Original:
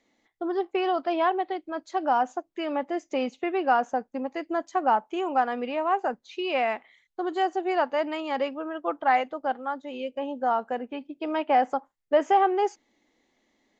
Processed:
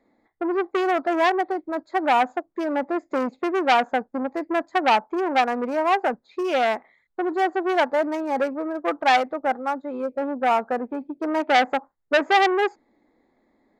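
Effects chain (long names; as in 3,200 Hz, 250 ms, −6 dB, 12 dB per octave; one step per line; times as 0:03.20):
adaptive Wiener filter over 15 samples
saturating transformer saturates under 2,000 Hz
level +7 dB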